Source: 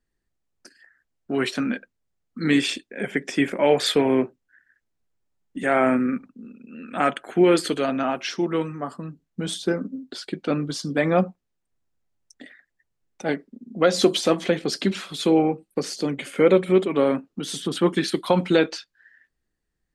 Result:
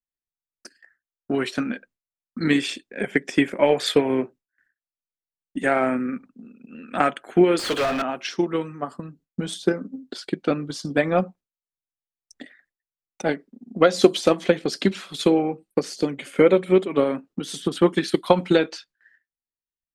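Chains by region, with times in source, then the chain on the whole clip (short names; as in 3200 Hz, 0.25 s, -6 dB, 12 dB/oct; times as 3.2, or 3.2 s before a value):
7.59–8.02 block floating point 7-bit + low shelf 320 Hz -10 dB + overdrive pedal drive 31 dB, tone 2400 Hz, clips at -13.5 dBFS
whole clip: gate with hold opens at -45 dBFS; low shelf 150 Hz -3 dB; transient shaper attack +8 dB, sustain 0 dB; gain -3 dB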